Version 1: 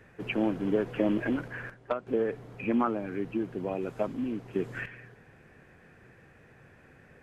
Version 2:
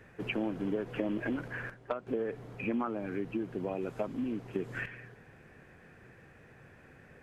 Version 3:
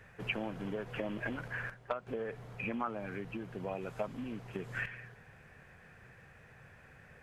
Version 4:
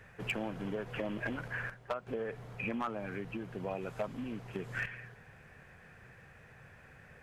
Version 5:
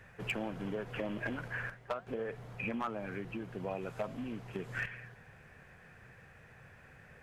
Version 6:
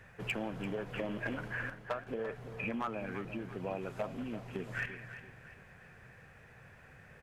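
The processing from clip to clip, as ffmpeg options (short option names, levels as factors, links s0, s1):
-af "acompressor=threshold=0.0282:ratio=3"
-af "equalizer=f=310:t=o:w=1.1:g=-11,volume=1.12"
-af "asoftclip=type=hard:threshold=0.0398,volume=1.12"
-af "flanger=delay=1.1:depth=9.8:regen=-89:speed=0.39:shape=sinusoidal,volume=1.58"
-af "aecho=1:1:340|680|1020|1360:0.251|0.1|0.0402|0.0161"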